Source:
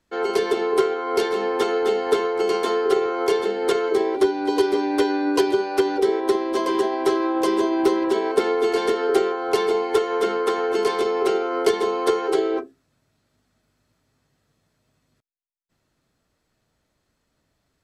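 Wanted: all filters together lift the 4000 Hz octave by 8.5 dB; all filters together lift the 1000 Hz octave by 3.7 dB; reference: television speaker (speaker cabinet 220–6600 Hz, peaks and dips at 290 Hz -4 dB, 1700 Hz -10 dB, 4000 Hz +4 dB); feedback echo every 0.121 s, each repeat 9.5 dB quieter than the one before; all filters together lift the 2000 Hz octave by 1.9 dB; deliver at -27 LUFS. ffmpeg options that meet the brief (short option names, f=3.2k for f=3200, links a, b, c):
-af "highpass=f=220:w=0.5412,highpass=f=220:w=1.3066,equalizer=f=290:t=q:w=4:g=-4,equalizer=f=1.7k:t=q:w=4:g=-10,equalizer=f=4k:t=q:w=4:g=4,lowpass=f=6.6k:w=0.5412,lowpass=f=6.6k:w=1.3066,equalizer=f=1k:t=o:g=4,equalizer=f=2k:t=o:g=4.5,equalizer=f=4k:t=o:g=7,aecho=1:1:121|242|363|484:0.335|0.111|0.0365|0.012,volume=-7dB"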